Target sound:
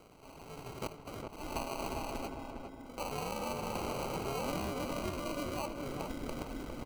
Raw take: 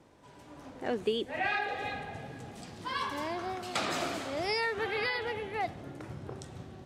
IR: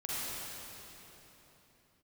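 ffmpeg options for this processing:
-filter_complex "[0:a]asettb=1/sr,asplit=3[link_01][link_02][link_03];[link_01]atrim=end=0.874[link_04];[link_02]atrim=start=0.87:end=1.56,asetpts=PTS-STARTPTS,afade=type=in:duration=0.004:curve=qsin,afade=type=out:start_time=0.686:duration=0.004:curve=qsin,aderivative[link_05];[link_03]atrim=start=1.556[link_06];[link_04][link_05]acrossfade=duration=0.004:curve1=hsin:curve2=qsin[link_07];[link_07][link_06]acrossfade=duration=0.004:curve1=qsin:curve2=hsin,acompressor=threshold=-37dB:ratio=6,aeval=exprs='val(0)*sin(2*PI*140*n/s)':channel_layout=same,asettb=1/sr,asplit=3[link_08][link_09][link_10];[link_08]atrim=end=2.284[link_11];[link_09]atrim=start=2.28:end=2.98,asetpts=PTS-STARTPTS,afade=type=in:duration=0.004:curve=qsin,afade=type=out:start_time=0.696:duration=0.004:curve=qsin,asplit=3[link_12][link_13][link_14];[link_12]bandpass=frequency=270:width_type=q:width=8,volume=0dB[link_15];[link_13]bandpass=frequency=2290:width_type=q:width=8,volume=-6dB[link_16];[link_14]bandpass=frequency=3010:width_type=q:width=8,volume=-9dB[link_17];[link_15][link_16][link_17]amix=inputs=3:normalize=0[link_18];[link_10]atrim=start=2.976[link_19];[link_11][link_18]acrossfade=duration=0.004:curve1=hsin:curve2=qsin[link_20];[link_20][link_19]acrossfade=duration=0.004:curve1=qsin:curve2=hsin,acrusher=samples=25:mix=1:aa=0.000001,asettb=1/sr,asplit=3[link_21][link_22][link_23];[link_21]atrim=end=4.794[link_24];[link_22]atrim=start=4.79:end=5.54,asetpts=PTS-STARTPTS,afade=type=in:duration=0.004:curve=qsin,afade=type=out:start_time=0.746:duration=0.004:curve=qsin,asuperstop=centerf=800:order=4:qfactor=4.7[link_25];[link_23]atrim=start=5.536[link_26];[link_24][link_25]acrossfade=duration=0.004:curve1=hsin:curve2=qsin[link_27];[link_27][link_26]acrossfade=duration=0.004:curve1=qsin:curve2=hsin,asplit=2[link_28][link_29];[link_29]adelay=406,lowpass=frequency=1600:poles=1,volume=-4dB,asplit=2[link_30][link_31];[link_31]adelay=406,lowpass=frequency=1600:poles=1,volume=0.43,asplit=2[link_32][link_33];[link_33]adelay=406,lowpass=frequency=1600:poles=1,volume=0.43,asplit=2[link_34][link_35];[link_35]adelay=406,lowpass=frequency=1600:poles=1,volume=0.43,asplit=2[link_36][link_37];[link_37]adelay=406,lowpass=frequency=1600:poles=1,volume=0.43[link_38];[link_28][link_30][link_32][link_34][link_36][link_38]amix=inputs=6:normalize=0,volume=5dB"

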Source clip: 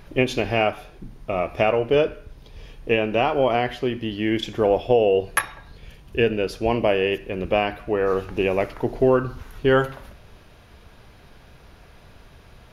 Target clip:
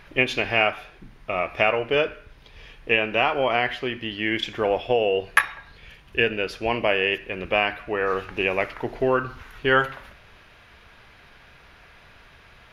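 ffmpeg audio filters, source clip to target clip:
ffmpeg -i in.wav -af "equalizer=frequency=2000:width_type=o:width=2.4:gain=13,volume=-7dB" out.wav

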